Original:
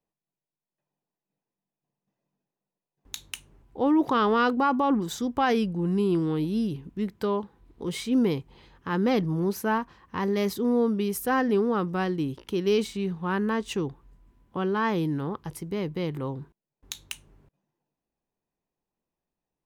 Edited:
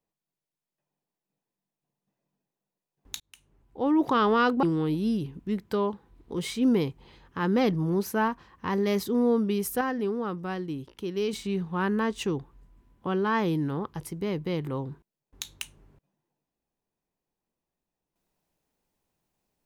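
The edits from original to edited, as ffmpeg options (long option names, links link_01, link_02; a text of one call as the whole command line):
ffmpeg -i in.wav -filter_complex "[0:a]asplit=5[link_01][link_02][link_03][link_04][link_05];[link_01]atrim=end=3.2,asetpts=PTS-STARTPTS,afade=type=out:start_time=3.196:duration=0.004:curve=hsin[link_06];[link_02]atrim=start=3.2:end=4.632,asetpts=PTS-STARTPTS,afade=type=in:duration=0.88[link_07];[link_03]atrim=start=6.128:end=11.312[link_08];[link_04]atrim=start=11.308:end=12.832,asetpts=PTS-STARTPTS,volume=-5.5dB[link_09];[link_05]atrim=start=12.828[link_10];[link_06][link_07]concat=n=2:v=0:a=1[link_11];[link_11][link_08]acrossfade=duration=0.004:curve1=hsin:curve2=hsin[link_12];[link_12][link_09]acrossfade=duration=0.004:curve1=hsin:curve2=hsin[link_13];[link_13][link_10]acrossfade=duration=0.004:curve1=hsin:curve2=hsin" out.wav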